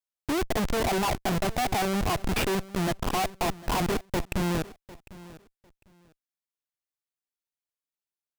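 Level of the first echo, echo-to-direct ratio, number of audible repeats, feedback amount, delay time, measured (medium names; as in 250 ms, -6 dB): -19.0 dB, -19.0 dB, 2, 20%, 751 ms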